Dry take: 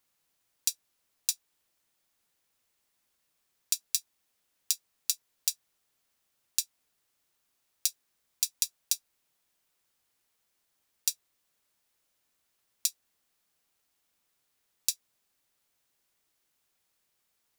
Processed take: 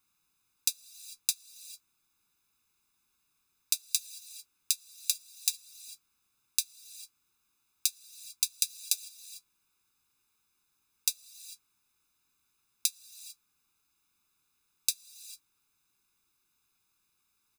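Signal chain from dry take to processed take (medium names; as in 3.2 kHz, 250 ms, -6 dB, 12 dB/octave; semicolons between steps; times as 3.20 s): comb 0.8 ms, depth 91%; on a send: reverberation, pre-delay 3 ms, DRR 15 dB; on the sum: trim -2 dB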